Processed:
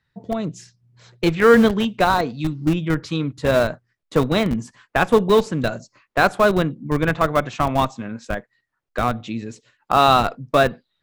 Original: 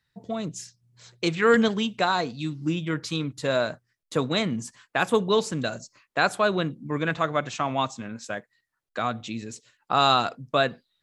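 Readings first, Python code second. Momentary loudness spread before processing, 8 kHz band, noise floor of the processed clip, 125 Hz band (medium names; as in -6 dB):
15 LU, 0.0 dB, -76 dBFS, +7.5 dB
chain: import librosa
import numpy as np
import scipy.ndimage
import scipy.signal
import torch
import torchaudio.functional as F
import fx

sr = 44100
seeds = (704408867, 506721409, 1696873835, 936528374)

p1 = fx.lowpass(x, sr, hz=2000.0, slope=6)
p2 = fx.schmitt(p1, sr, flips_db=-22.5)
p3 = p1 + (p2 * librosa.db_to_amplitude(-5.5))
y = p3 * librosa.db_to_amplitude(6.0)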